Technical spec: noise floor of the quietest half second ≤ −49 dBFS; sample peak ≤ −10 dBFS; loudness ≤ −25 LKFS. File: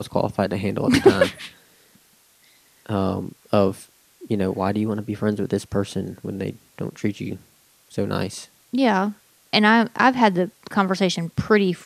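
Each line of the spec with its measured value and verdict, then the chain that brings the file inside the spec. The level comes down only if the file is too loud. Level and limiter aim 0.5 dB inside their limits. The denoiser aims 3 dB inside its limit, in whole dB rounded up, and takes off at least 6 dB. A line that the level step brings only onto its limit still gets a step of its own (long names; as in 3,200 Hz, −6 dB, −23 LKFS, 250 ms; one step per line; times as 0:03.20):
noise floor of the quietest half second −57 dBFS: in spec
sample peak −3.0 dBFS: out of spec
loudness −22.0 LKFS: out of spec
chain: level −3.5 dB
brickwall limiter −10.5 dBFS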